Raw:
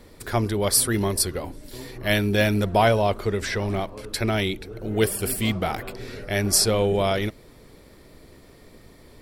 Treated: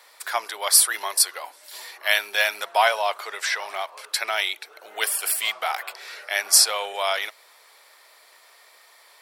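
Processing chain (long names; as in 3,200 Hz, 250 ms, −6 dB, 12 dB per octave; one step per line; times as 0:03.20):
high-pass filter 790 Hz 24 dB per octave
level +4.5 dB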